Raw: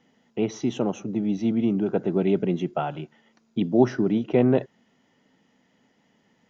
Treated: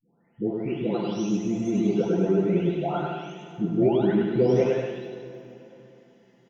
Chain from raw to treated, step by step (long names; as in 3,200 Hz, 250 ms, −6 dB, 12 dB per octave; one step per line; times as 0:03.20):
every frequency bin delayed by itself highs late, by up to 908 ms
bouncing-ball delay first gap 100 ms, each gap 0.75×, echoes 5
dense smooth reverb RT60 3.5 s, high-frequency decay 0.95×, DRR 9.5 dB